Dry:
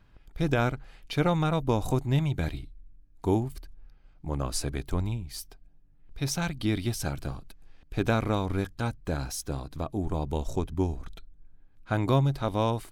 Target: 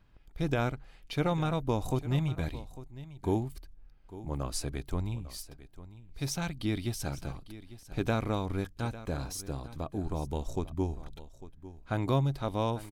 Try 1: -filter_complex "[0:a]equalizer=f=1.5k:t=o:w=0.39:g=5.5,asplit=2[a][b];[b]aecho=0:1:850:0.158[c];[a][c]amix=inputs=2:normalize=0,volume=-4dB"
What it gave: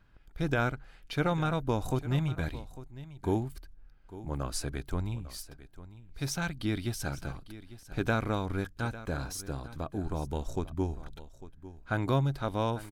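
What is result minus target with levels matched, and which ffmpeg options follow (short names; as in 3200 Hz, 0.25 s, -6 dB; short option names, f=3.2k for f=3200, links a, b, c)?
2000 Hz band +4.5 dB
-filter_complex "[0:a]equalizer=f=1.5k:t=o:w=0.39:g=-2,asplit=2[a][b];[b]aecho=0:1:850:0.158[c];[a][c]amix=inputs=2:normalize=0,volume=-4dB"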